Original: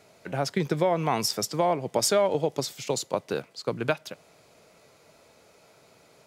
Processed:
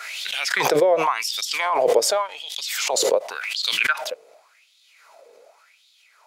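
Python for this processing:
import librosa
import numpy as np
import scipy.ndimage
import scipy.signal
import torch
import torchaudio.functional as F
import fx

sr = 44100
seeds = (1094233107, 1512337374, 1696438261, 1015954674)

y = fx.filter_lfo_highpass(x, sr, shape='sine', hz=0.89, low_hz=450.0, high_hz=3600.0, q=5.8)
y = fx.pre_swell(y, sr, db_per_s=26.0)
y = y * 10.0 ** (-2.5 / 20.0)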